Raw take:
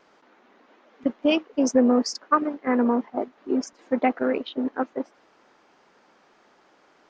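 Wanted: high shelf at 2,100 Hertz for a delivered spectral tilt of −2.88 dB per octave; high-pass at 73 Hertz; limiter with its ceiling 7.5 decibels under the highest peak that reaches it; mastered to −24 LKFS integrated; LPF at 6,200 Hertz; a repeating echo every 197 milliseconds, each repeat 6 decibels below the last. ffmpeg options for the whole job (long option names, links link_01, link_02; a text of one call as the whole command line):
ffmpeg -i in.wav -af "highpass=73,lowpass=6200,highshelf=frequency=2100:gain=8,alimiter=limit=-13dB:level=0:latency=1,aecho=1:1:197|394|591|788|985|1182:0.501|0.251|0.125|0.0626|0.0313|0.0157,volume=0.5dB" out.wav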